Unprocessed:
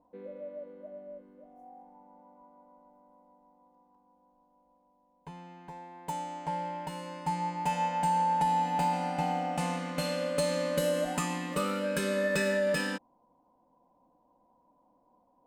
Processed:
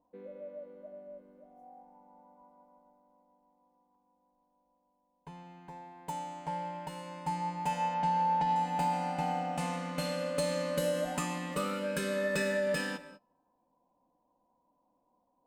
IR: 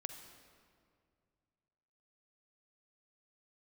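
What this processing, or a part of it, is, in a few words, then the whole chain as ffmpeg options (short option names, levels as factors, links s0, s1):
keyed gated reverb: -filter_complex "[0:a]asplit=3[s0][s1][s2];[1:a]atrim=start_sample=2205[s3];[s1][s3]afir=irnorm=-1:irlink=0[s4];[s2]apad=whole_len=681823[s5];[s4][s5]sidechaingate=range=0.0355:threshold=0.00126:ratio=16:detection=peak,volume=1.06[s6];[s0][s6]amix=inputs=2:normalize=0,asettb=1/sr,asplit=3[s7][s8][s9];[s7]atrim=end=7.944[s10];[s8]atrim=start=7.94:end=8.56,asetpts=PTS-STARTPTS,afade=t=in:d=0.004:c=qsin,afade=t=out:st=0.616:d=0.004:c=qsin,lowpass=f=5700:w=0.5412,lowpass=f=5700:w=1.3066[s11];[s9]atrim=start=8.556[s12];[s10][s11]acrossfade=d=0.004:c1=hsin:c2=qsin[s13];[s13][s12]acrossfade=d=0.004:c1=qsin:c2=hsin,volume=0.422"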